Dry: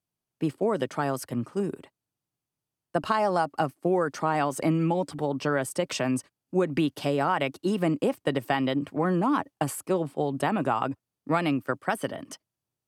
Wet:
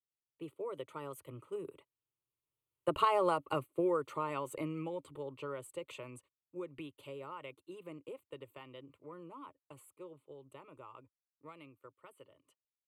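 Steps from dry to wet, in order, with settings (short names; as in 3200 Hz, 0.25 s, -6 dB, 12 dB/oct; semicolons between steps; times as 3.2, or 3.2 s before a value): Doppler pass-by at 3.11, 10 m/s, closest 6.1 m; fixed phaser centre 1100 Hz, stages 8; gain -1 dB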